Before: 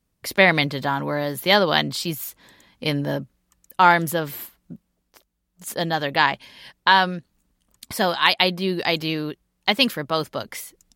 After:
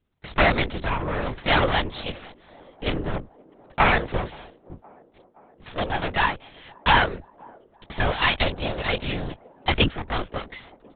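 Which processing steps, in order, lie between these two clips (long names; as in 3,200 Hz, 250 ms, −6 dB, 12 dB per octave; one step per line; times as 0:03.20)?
lower of the sound and its delayed copy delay 4 ms
linear-prediction vocoder at 8 kHz whisper
delay with a band-pass on its return 521 ms, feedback 67%, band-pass 430 Hz, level −22.5 dB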